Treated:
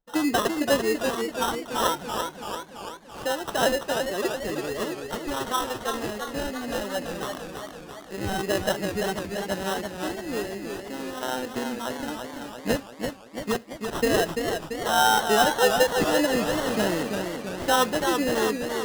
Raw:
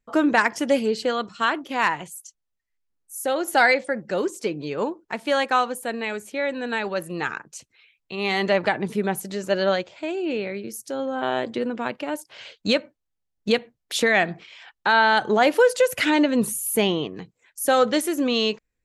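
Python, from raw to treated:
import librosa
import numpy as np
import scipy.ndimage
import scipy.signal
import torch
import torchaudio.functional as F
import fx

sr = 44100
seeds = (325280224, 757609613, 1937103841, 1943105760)

y = fx.spec_ripple(x, sr, per_octave=1.3, drift_hz=-1.6, depth_db=15)
y = fx.sample_hold(y, sr, seeds[0], rate_hz=2300.0, jitter_pct=0)
y = fx.echo_warbled(y, sr, ms=337, feedback_pct=61, rate_hz=2.8, cents=90, wet_db=-5.5)
y = F.gain(torch.from_numpy(y), -7.0).numpy()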